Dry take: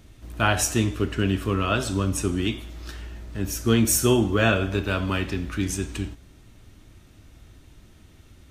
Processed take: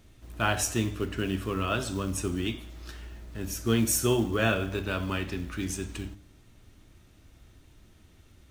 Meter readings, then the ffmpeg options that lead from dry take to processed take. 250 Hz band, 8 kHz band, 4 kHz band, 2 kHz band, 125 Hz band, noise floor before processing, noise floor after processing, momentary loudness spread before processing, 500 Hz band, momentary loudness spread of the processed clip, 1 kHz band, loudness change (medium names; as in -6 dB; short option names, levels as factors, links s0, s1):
-5.5 dB, -5.0 dB, -5.0 dB, -5.0 dB, -6.5 dB, -52 dBFS, -57 dBFS, 16 LU, -5.0 dB, 18 LU, -5.0 dB, -5.5 dB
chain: -af "acrusher=bits=7:mode=log:mix=0:aa=0.000001,bandreject=f=50:t=h:w=6,bandreject=f=100:t=h:w=6,bandreject=f=150:t=h:w=6,bandreject=f=200:t=h:w=6,bandreject=f=250:t=h:w=6,bandreject=f=300:t=h:w=6,volume=0.562"